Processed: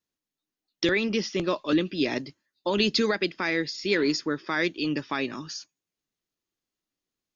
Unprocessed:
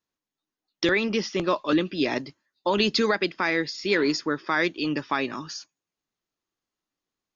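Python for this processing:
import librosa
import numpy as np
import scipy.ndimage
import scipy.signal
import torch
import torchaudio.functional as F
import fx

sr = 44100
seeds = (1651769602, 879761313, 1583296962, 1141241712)

y = fx.peak_eq(x, sr, hz=1000.0, db=-6.0, octaves=1.5)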